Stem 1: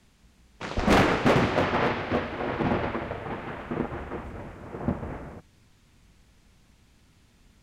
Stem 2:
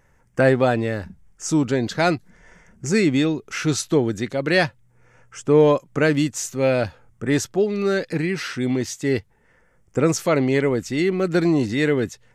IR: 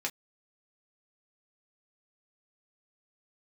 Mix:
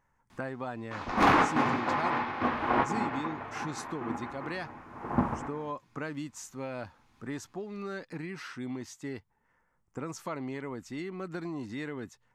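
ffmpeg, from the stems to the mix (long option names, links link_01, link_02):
-filter_complex "[0:a]adelay=300,volume=-1dB,asplit=2[link_01][link_02];[link_02]volume=-13.5dB[link_03];[1:a]acompressor=threshold=-19dB:ratio=6,volume=-16.5dB,asplit=2[link_04][link_05];[link_05]apad=whole_len=349594[link_06];[link_01][link_06]sidechaincompress=threshold=-60dB:ratio=8:attack=16:release=390[link_07];[2:a]atrim=start_sample=2205[link_08];[link_03][link_08]afir=irnorm=-1:irlink=0[link_09];[link_07][link_04][link_09]amix=inputs=3:normalize=0,equalizer=frequency=250:width_type=o:width=1:gain=4,equalizer=frequency=500:width_type=o:width=1:gain=-4,equalizer=frequency=1000:width_type=o:width=1:gain=12"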